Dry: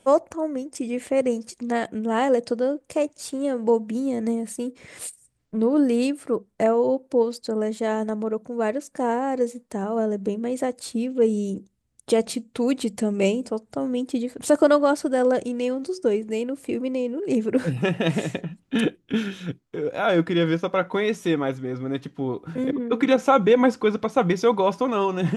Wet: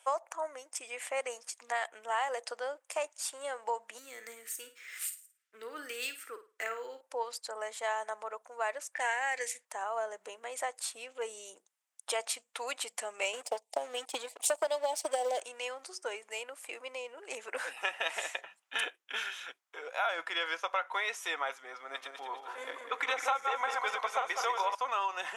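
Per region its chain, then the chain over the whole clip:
3.98–7.01 band shelf 770 Hz -16 dB 1.2 oct + flutter echo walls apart 9.1 m, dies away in 0.31 s + decimation joined by straight lines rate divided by 2×
8.94–9.65 low-pass opened by the level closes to 2200 Hz, open at -22.5 dBFS + resonant high shelf 1500 Hz +7.5 dB, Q 3
13.33–15.4 transient shaper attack +9 dB, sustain +1 dB + Butterworth band-stop 1400 Hz, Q 0.84 + sample leveller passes 1
21.81–24.75 regenerating reverse delay 0.1 s, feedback 61%, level -5 dB + HPF 130 Hz
whole clip: HPF 790 Hz 24 dB/oct; bell 4300 Hz -5 dB 0.46 oct; compressor 6:1, threshold -28 dBFS

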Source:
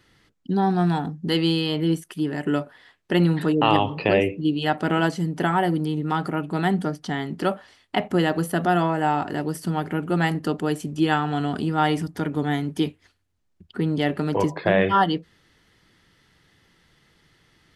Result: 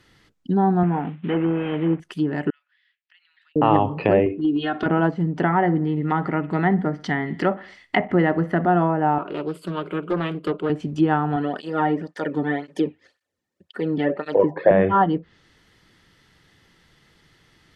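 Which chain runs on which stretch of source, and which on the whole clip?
0.83–2 CVSD 16 kbps + HPF 46 Hz + bell 75 Hz -10 dB 1.3 oct
2.5–3.56 inverse Chebyshev high-pass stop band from 480 Hz, stop band 70 dB + compressor 2.5:1, threshold -54 dBFS + tape spacing loss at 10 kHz 41 dB
4.26–4.86 speaker cabinet 110–9800 Hz, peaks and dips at 190 Hz +8 dB, 540 Hz -4 dB, 850 Hz -7 dB, 1500 Hz +4 dB, 3500 Hz +9 dB, 7500 Hz -7 dB + compressor 5:1, threshold -22 dBFS + comb 2.8 ms, depth 86%
5.44–8.66 bell 2000 Hz +12 dB 0.31 oct + feedback echo 61 ms, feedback 52%, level -21.5 dB
9.18–10.7 resonant low shelf 150 Hz -10.5 dB, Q 3 + fixed phaser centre 1200 Hz, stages 8 + Doppler distortion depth 0.3 ms
11.36–14.71 low shelf 130 Hz -6.5 dB + small resonant body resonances 540/1800 Hz, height 12 dB, ringing for 35 ms + tape flanging out of phase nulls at 1.9 Hz, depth 2 ms
whole clip: treble ducked by the level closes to 1300 Hz, closed at -19.5 dBFS; bell 10000 Hz -3 dB 0.24 oct; gain +2.5 dB

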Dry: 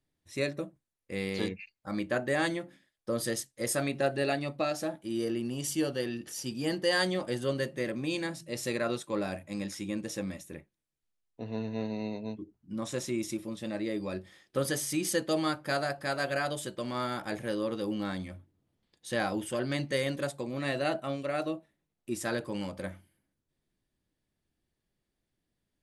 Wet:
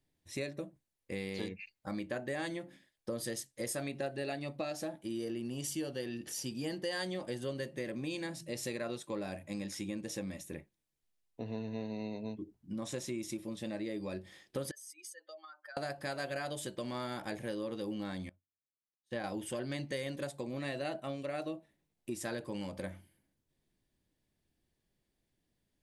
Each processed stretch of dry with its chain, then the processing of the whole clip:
14.71–15.77 spectral contrast raised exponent 2.1 + HPF 950 Hz 24 dB/oct + compressor 12:1, threshold -46 dBFS
18.29–19.24 high shelf 3900 Hz -9 dB + upward expander 2.5:1, over -53 dBFS
whole clip: bell 1300 Hz -5 dB 0.4 oct; compressor 3:1, threshold -39 dBFS; gain +1.5 dB

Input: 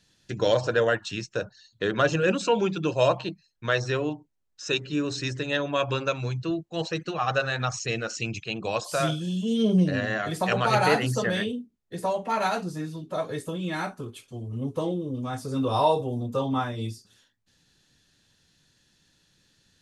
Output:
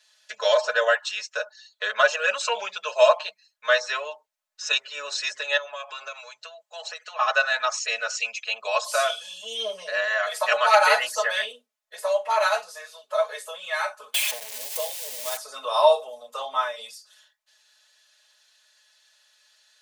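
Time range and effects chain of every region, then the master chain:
5.57–7.19 bell 7500 Hz +4 dB 0.39 oct + compressor, threshold -33 dBFS + HPF 340 Hz 6 dB/oct
14.14–15.37 switching spikes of -23.5 dBFS + bell 1300 Hz -14.5 dB 0.57 oct + three-band squash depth 100%
whole clip: elliptic high-pass 560 Hz, stop band 40 dB; bell 760 Hz -5 dB 0.23 oct; comb 4.7 ms, depth 99%; gain +3 dB

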